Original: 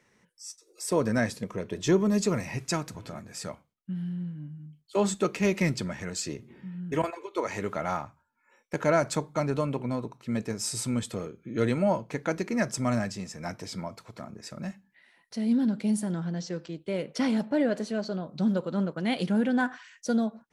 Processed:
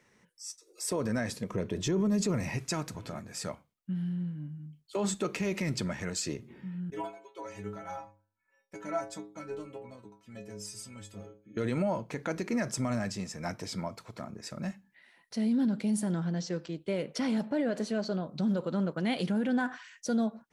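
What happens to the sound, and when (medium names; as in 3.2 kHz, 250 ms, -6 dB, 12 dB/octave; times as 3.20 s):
1.50–2.50 s: bass shelf 400 Hz +6 dB
6.90–11.57 s: inharmonic resonator 99 Hz, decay 0.47 s, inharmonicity 0.008
whole clip: peak limiter -22 dBFS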